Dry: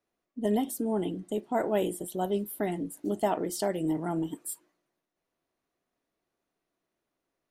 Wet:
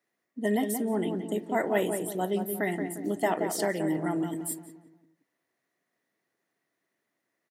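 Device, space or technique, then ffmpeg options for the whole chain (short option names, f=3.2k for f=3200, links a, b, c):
exciter from parts: -filter_complex "[0:a]asplit=2[a][b];[b]highpass=3.4k,asoftclip=type=tanh:threshold=-33.5dB,volume=-6dB[c];[a][c]amix=inputs=2:normalize=0,highpass=f=110:w=0.5412,highpass=f=110:w=1.3066,equalizer=f=1.9k:w=3.6:g=13.5,asplit=2[d][e];[e]adelay=176,lowpass=f=1.4k:p=1,volume=-6dB,asplit=2[f][g];[g]adelay=176,lowpass=f=1.4k:p=1,volume=0.43,asplit=2[h][i];[i]adelay=176,lowpass=f=1.4k:p=1,volume=0.43,asplit=2[j][k];[k]adelay=176,lowpass=f=1.4k:p=1,volume=0.43,asplit=2[l][m];[m]adelay=176,lowpass=f=1.4k:p=1,volume=0.43[n];[d][f][h][j][l][n]amix=inputs=6:normalize=0"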